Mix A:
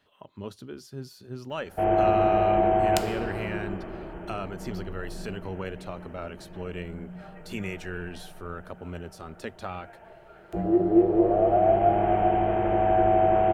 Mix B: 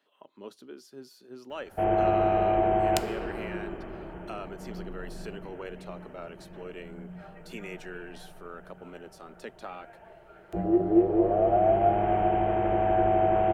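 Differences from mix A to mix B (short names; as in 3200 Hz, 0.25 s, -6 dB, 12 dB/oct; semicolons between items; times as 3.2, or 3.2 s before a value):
speech: add ladder high-pass 210 Hz, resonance 20%; background: send -6.0 dB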